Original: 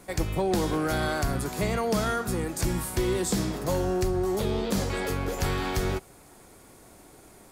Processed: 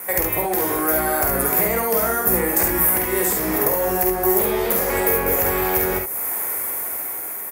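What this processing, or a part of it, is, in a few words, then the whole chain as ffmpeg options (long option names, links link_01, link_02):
FM broadcast chain: -filter_complex "[0:a]highpass=69,equalizer=frequency=125:width_type=o:width=1:gain=-11,equalizer=frequency=250:width_type=o:width=1:gain=-3,equalizer=frequency=500:width_type=o:width=1:gain=4,equalizer=frequency=1000:width_type=o:width=1:gain=6,equalizer=frequency=2000:width_type=o:width=1:gain=12,equalizer=frequency=4000:width_type=o:width=1:gain=-10,equalizer=frequency=8000:width_type=o:width=1:gain=-10,dynaudnorm=framelen=650:gausssize=5:maxgain=10dB,acrossover=split=820|4600[link_01][link_02][link_03];[link_01]acompressor=threshold=-25dB:ratio=4[link_04];[link_02]acompressor=threshold=-37dB:ratio=4[link_05];[link_03]acompressor=threshold=-52dB:ratio=4[link_06];[link_04][link_05][link_06]amix=inputs=3:normalize=0,aemphasis=mode=production:type=50fm,alimiter=limit=-19.5dB:level=0:latency=1:release=292,asoftclip=type=hard:threshold=-20.5dB,lowpass=frequency=15000:width=0.5412,lowpass=frequency=15000:width=1.3066,aemphasis=mode=production:type=50fm,aecho=1:1:48|70:0.596|0.562,volume=5dB"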